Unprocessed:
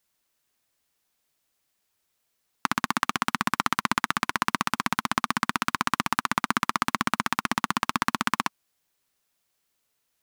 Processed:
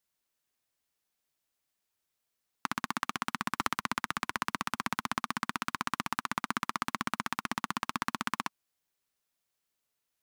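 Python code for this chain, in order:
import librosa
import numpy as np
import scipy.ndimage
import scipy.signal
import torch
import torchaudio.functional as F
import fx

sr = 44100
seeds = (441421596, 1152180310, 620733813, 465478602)

y = fx.band_squash(x, sr, depth_pct=100, at=(3.6, 5.16))
y = y * 10.0 ** (-8.0 / 20.0)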